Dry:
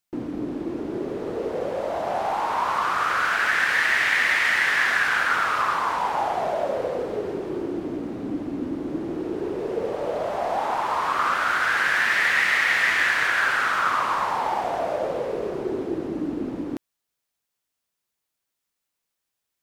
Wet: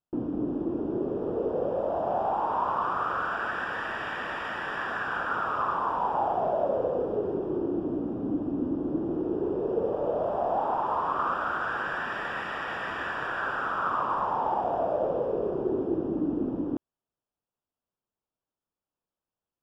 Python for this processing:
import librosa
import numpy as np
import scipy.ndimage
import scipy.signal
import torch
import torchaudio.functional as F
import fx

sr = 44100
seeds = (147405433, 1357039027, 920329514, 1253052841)

y = scipy.signal.lfilter(np.full(21, 1.0 / 21), 1.0, x)